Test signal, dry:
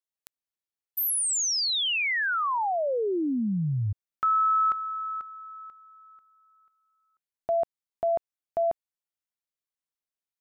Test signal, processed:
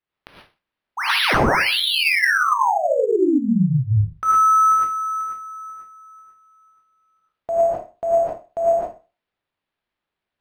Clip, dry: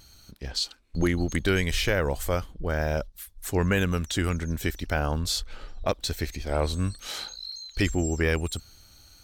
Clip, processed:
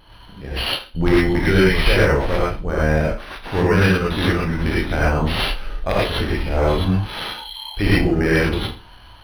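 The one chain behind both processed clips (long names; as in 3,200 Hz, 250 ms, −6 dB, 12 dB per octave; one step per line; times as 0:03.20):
peak hold with a decay on every bin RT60 0.32 s
wrap-around overflow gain 12.5 dB
reverb whose tail is shaped and stops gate 140 ms rising, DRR −7 dB
linearly interpolated sample-rate reduction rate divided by 6×
level +1.5 dB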